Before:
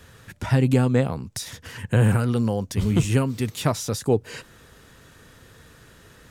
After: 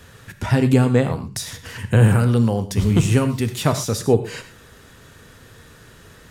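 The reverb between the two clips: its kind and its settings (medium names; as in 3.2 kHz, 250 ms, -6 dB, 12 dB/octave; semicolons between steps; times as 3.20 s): gated-style reverb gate 140 ms flat, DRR 9.5 dB; trim +3.5 dB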